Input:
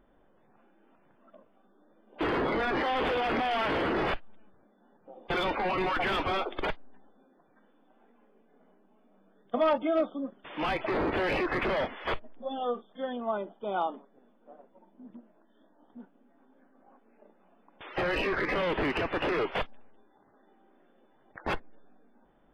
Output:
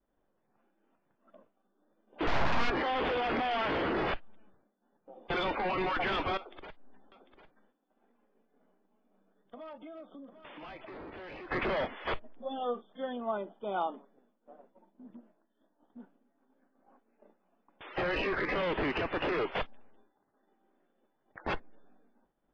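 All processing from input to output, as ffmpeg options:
ffmpeg -i in.wav -filter_complex "[0:a]asettb=1/sr,asplit=3[link_01][link_02][link_03];[link_01]atrim=end=2.274[link_04];[link_02]atrim=start=2.27:end=2.7,asetpts=PTS-STARTPTS,afade=type=in:duration=0.004:curve=qsin,afade=type=out:start_time=0.426:duration=0.004:curve=qsin,equalizer=frequency=530:width=0.7:gain=8,aecho=1:1:7:0.32,atrim=end_sample=18963,aeval=exprs='abs(val(0))':channel_layout=same[link_05];[link_03]atrim=start=2.696[link_06];[link_04][link_05]acrossfade=duration=0.004:curve1=hsin:curve2=qsin[link_07];[link_07][link_06]acrossfade=duration=0.004:curve1=qsin:curve2=hsin,asettb=1/sr,asplit=3[link_08][link_09][link_10];[link_08]atrim=end=6.374[link_11];[link_09]atrim=start=6.37:end=11.51,asetpts=PTS-STARTPTS,afade=type=in:duration=0.004:curve=qsin,afade=type=out:start_time=5.136:duration=0.004:curve=qsin,acompressor=threshold=-44dB:ratio=5:attack=3.2:release=140:knee=1:detection=peak,aecho=1:1:748:0.266,atrim=end_sample=226674[link_12];[link_10]atrim=start=11.506[link_13];[link_11][link_12]acrossfade=duration=0.004:curve1=hsin:curve2=qsin[link_14];[link_14][link_13]acrossfade=duration=0.004:curve1=qsin:curve2=hsin,lowpass=frequency=5800:width=0.5412,lowpass=frequency=5800:width=1.3066,agate=range=-33dB:threshold=-55dB:ratio=3:detection=peak,volume=-2.5dB" out.wav

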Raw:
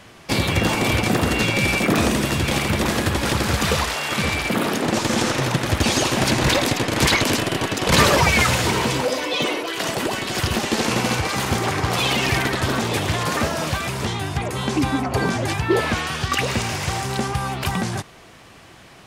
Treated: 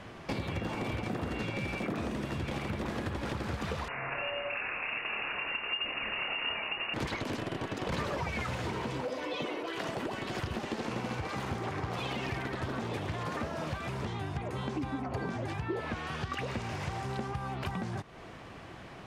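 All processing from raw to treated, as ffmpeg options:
ffmpeg -i in.wav -filter_complex "[0:a]asettb=1/sr,asplit=3[link_01][link_02][link_03];[link_01]atrim=end=3.884[link_04];[link_02]atrim=start=3.88:end=6.94,asetpts=PTS-STARTPTS,afade=type=in:duration=0.004:curve=qsin,afade=type=out:start_time=3.056:duration=0.004:curve=qsin,asubboost=boost=6:cutoff=120,lowpass=frequency=2500:width_type=q:width=0.5098,lowpass=frequency=2500:width_type=q:width=0.6013,lowpass=frequency=2500:width_type=q:width=0.9,lowpass=frequency=2500:width_type=q:width=2.563,afreqshift=-2900,asplit=2[link_05][link_06];[link_06]adelay=28,volume=-5dB[link_07];[link_05][link_07]amix=inputs=2:normalize=0,atrim=end_sample=134946[link_08];[link_03]atrim=start=6.936[link_09];[link_04][link_08]acrossfade=duration=0.004:curve1=hsin:curve2=qsin[link_10];[link_10][link_09]acrossfade=duration=0.004:curve1=qsin:curve2=hsin,lowpass=frequency=1700:poles=1,acompressor=threshold=-35dB:ratio=4" out.wav

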